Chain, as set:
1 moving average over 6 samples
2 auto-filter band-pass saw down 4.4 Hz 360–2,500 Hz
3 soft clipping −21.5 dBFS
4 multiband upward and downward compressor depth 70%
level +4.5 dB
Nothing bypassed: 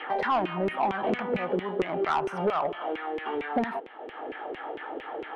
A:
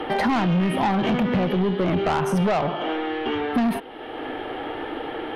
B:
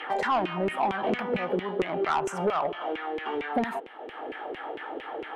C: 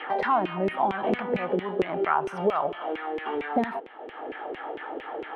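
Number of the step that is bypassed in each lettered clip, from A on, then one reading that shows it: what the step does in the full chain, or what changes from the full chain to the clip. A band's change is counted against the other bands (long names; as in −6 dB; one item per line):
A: 2, 125 Hz band +10.5 dB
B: 1, 4 kHz band +2.0 dB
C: 3, distortion level −14 dB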